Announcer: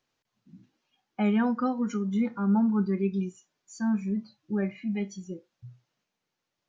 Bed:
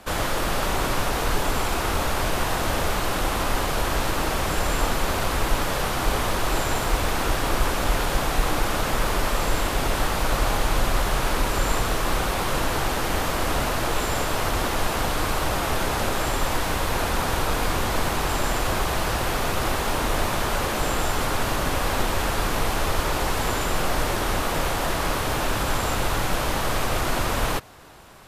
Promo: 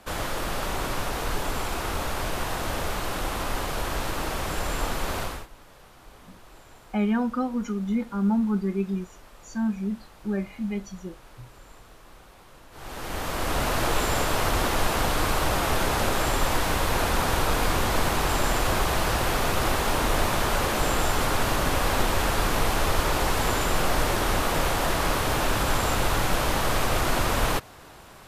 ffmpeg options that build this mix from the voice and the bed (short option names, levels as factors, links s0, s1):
-filter_complex "[0:a]adelay=5750,volume=1.06[s0];[1:a]volume=11.9,afade=t=out:st=5.2:d=0.27:silence=0.0841395,afade=t=in:st=12.71:d=1.1:silence=0.0473151[s1];[s0][s1]amix=inputs=2:normalize=0"